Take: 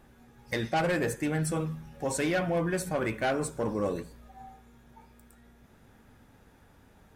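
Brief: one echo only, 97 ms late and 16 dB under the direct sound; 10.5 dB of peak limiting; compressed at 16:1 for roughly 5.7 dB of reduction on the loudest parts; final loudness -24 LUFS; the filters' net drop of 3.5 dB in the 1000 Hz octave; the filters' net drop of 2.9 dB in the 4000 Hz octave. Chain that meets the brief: bell 1000 Hz -5 dB; bell 4000 Hz -3.5 dB; compressor 16:1, threshold -31 dBFS; limiter -33 dBFS; echo 97 ms -16 dB; gain +17.5 dB

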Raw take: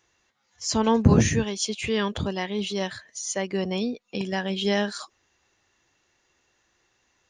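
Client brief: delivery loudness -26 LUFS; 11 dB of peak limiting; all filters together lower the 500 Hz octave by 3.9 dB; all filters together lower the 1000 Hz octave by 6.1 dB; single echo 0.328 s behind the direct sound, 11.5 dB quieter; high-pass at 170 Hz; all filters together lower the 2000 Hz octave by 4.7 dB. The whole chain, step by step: HPF 170 Hz; bell 500 Hz -3.5 dB; bell 1000 Hz -5.5 dB; bell 2000 Hz -4 dB; limiter -19.5 dBFS; echo 0.328 s -11.5 dB; gain +4.5 dB

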